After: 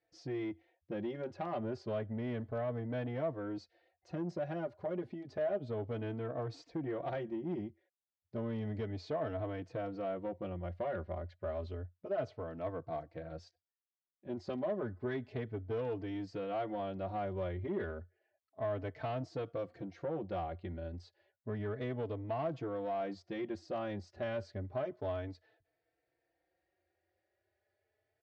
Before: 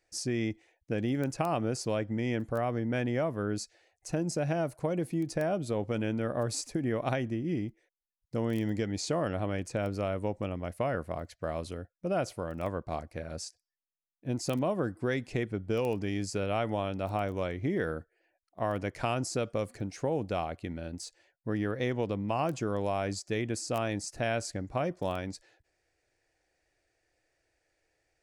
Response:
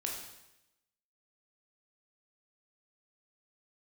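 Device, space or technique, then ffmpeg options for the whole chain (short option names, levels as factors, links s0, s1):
barber-pole flanger into a guitar amplifier: -filter_complex "[0:a]asplit=2[s0][s1];[s1]adelay=4,afreqshift=0.31[s2];[s0][s2]amix=inputs=2:normalize=1,asoftclip=type=tanh:threshold=0.0355,highpass=83,equalizer=f=88:t=q:w=4:g=9,equalizer=f=380:t=q:w=4:g=5,equalizer=f=640:t=q:w=4:g=6,equalizer=f=2500:t=q:w=4:g=-6,lowpass=f=3800:w=0.5412,lowpass=f=3800:w=1.3066,volume=0.631"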